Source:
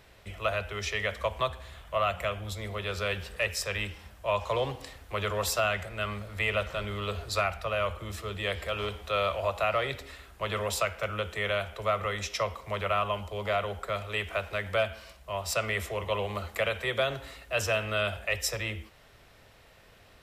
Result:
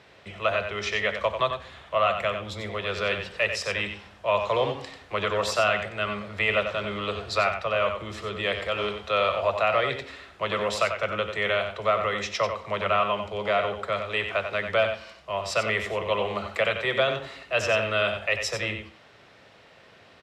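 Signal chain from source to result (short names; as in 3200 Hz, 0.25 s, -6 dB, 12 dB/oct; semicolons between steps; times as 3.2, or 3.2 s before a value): BPF 140–5100 Hz; echo 92 ms -8 dB; gain +4.5 dB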